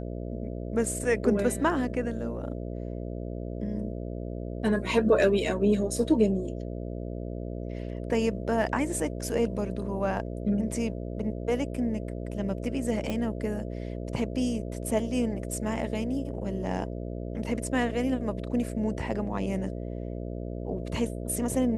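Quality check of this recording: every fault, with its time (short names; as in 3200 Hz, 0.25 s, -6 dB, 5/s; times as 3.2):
buzz 60 Hz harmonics 11 -35 dBFS
13.1 pop -18 dBFS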